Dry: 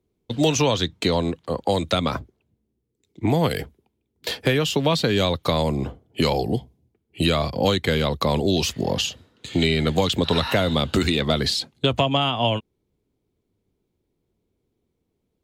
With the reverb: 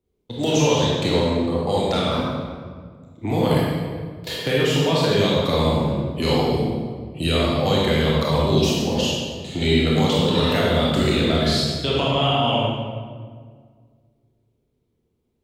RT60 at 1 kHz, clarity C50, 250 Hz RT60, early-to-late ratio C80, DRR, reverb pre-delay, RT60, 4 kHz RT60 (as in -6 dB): 1.6 s, -3.0 dB, 2.3 s, 0.0 dB, -6.0 dB, 23 ms, 1.8 s, 1.1 s